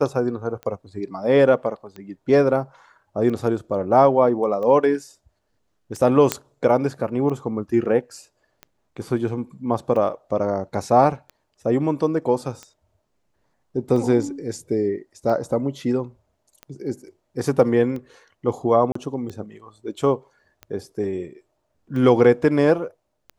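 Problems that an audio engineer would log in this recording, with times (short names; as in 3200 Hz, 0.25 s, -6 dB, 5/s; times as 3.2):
tick 45 rpm -22 dBFS
6.32 pop -3 dBFS
18.92–18.95 gap 34 ms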